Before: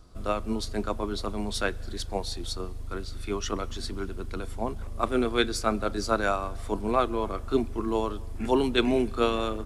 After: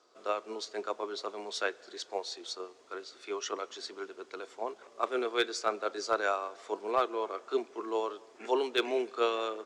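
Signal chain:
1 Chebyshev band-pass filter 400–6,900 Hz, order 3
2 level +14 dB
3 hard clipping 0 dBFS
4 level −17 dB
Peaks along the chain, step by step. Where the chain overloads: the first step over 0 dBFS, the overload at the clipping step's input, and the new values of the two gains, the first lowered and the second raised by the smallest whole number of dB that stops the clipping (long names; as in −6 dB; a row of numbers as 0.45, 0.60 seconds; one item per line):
−9.5, +4.5, 0.0, −17.0 dBFS
step 2, 4.5 dB
step 2 +9 dB, step 4 −12 dB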